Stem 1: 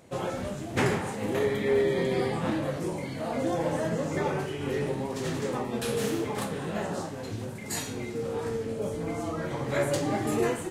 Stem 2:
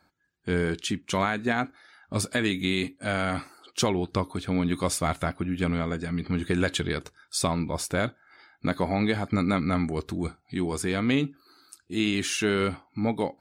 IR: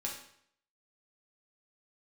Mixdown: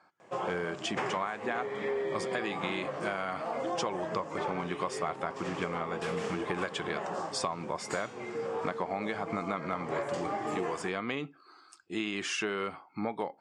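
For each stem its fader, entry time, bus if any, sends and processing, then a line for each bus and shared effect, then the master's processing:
-1.0 dB, 0.20 s, no send, dry
+1.0 dB, 0.00 s, no send, dry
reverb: off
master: speaker cabinet 230–7000 Hz, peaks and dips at 260 Hz -9 dB, 760 Hz +4 dB, 1100 Hz +8 dB, 4000 Hz -9 dB, 6300 Hz -5 dB; compressor 5:1, threshold -30 dBFS, peak gain reduction 13 dB

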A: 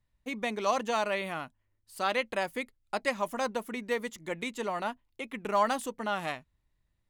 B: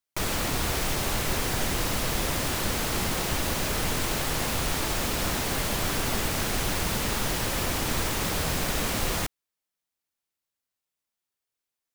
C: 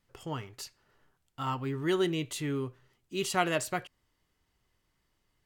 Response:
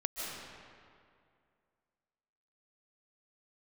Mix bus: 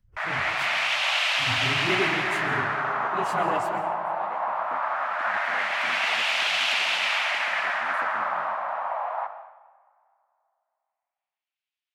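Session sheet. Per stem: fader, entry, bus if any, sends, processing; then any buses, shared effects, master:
-2.5 dB, 2.15 s, send -6 dB, auto swell 0.143 s; compressor 2:1, threshold -44 dBFS, peak gain reduction 11 dB; AM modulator 89 Hz, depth 95%
-1.0 dB, 0.00 s, send -6 dB, steep high-pass 600 Hz 72 dB/oct; bell 12000 Hz +6.5 dB 2.7 oct; LFO low-pass sine 0.19 Hz 910–2800 Hz
-6.5 dB, 0.00 s, send -3.5 dB, phase scrambler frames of 50 ms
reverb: on, RT60 2.3 s, pre-delay 0.11 s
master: upward compressor, threshold -37 dBFS; three-band expander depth 100%

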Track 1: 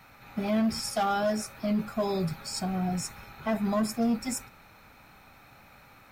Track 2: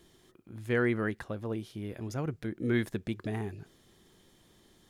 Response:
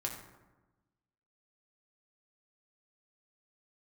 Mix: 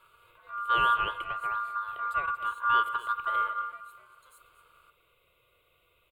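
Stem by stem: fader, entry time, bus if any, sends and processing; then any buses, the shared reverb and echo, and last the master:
-7.5 dB, 0.00 s, no send, echo send -14 dB, HPF 180 Hz; compressor 10:1, threshold -36 dBFS, peak gain reduction 13 dB; soft clip -39 dBFS, distortion -11 dB
+2.5 dB, 0.00 s, send -9 dB, echo send -11 dB, high shelf 4700 Hz -7 dB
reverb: on, RT60 1.1 s, pre-delay 4 ms
echo: echo 0.234 s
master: graphic EQ 125/250/500/4000/8000 Hz +9/-11/+4/-8/+4 dB; ring modulator 1300 Hz; fixed phaser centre 1200 Hz, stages 8

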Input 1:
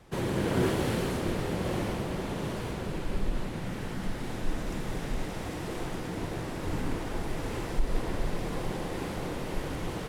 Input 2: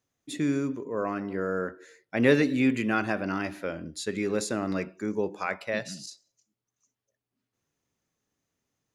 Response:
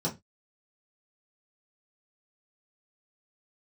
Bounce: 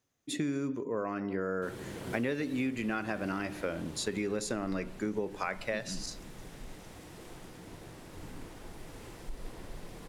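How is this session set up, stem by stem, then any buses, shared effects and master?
-14.0 dB, 1.50 s, no send, high shelf 3900 Hz +7.5 dB
+1.0 dB, 0.00 s, no send, dry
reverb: off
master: compressor 10:1, threshold -29 dBFS, peak gain reduction 15 dB

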